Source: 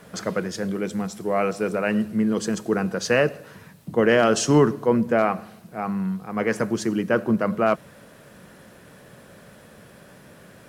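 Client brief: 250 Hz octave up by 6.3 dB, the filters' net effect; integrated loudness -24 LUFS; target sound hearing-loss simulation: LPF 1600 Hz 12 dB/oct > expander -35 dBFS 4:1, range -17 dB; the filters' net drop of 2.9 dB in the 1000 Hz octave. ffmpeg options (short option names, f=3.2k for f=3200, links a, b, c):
-af "lowpass=1.6k,equalizer=f=250:t=o:g=8,equalizer=f=1k:t=o:g=-4,agate=range=-17dB:threshold=-35dB:ratio=4,volume=-4dB"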